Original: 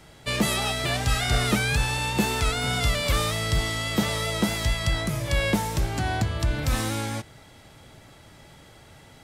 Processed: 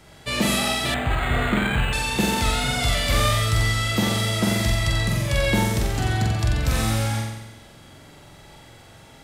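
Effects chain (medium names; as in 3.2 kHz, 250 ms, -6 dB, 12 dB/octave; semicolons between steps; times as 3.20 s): flutter echo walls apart 7.7 m, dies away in 1 s; 0.94–1.93 s: decimation joined by straight lines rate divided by 8×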